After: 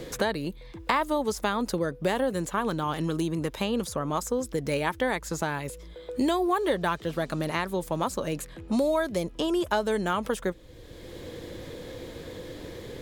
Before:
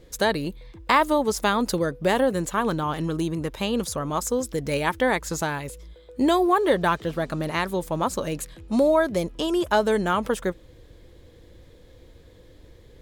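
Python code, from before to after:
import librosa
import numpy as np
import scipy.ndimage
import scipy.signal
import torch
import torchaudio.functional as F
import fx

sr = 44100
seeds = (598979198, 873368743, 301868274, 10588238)

y = fx.band_squash(x, sr, depth_pct=70)
y = F.gain(torch.from_numpy(y), -4.5).numpy()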